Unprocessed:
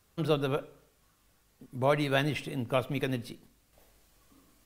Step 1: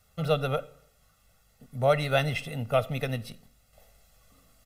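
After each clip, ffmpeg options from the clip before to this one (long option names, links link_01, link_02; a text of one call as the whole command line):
ffmpeg -i in.wav -af "aecho=1:1:1.5:0.87" out.wav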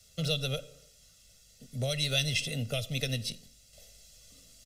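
ffmpeg -i in.wav -filter_complex "[0:a]acrossover=split=140|3000[link_01][link_02][link_03];[link_02]acompressor=threshold=-33dB:ratio=6[link_04];[link_01][link_04][link_03]amix=inputs=3:normalize=0,firequalizer=gain_entry='entry(600,0);entry(910,-17);entry(1500,-4);entry(3100,8);entry(5800,14);entry(13000,1)':delay=0.05:min_phase=1" out.wav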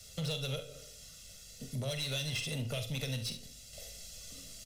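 ffmpeg -i in.wav -filter_complex "[0:a]acompressor=threshold=-43dB:ratio=2.5,asoftclip=type=tanh:threshold=-37.5dB,asplit=2[link_01][link_02];[link_02]aecho=0:1:45|70:0.335|0.224[link_03];[link_01][link_03]amix=inputs=2:normalize=0,volume=7dB" out.wav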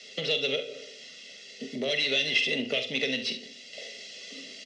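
ffmpeg -i in.wav -af "highpass=frequency=240:width=0.5412,highpass=frequency=240:width=1.3066,equalizer=frequency=250:width_type=q:width=4:gain=5,equalizer=frequency=400:width_type=q:width=4:gain=9,equalizer=frequency=960:width_type=q:width=4:gain=-10,equalizer=frequency=1400:width_type=q:width=4:gain=-6,equalizer=frequency=2000:width_type=q:width=4:gain=10,equalizer=frequency=2900:width_type=q:width=4:gain=7,lowpass=frequency=5200:width=0.5412,lowpass=frequency=5200:width=1.3066,volume=8dB" out.wav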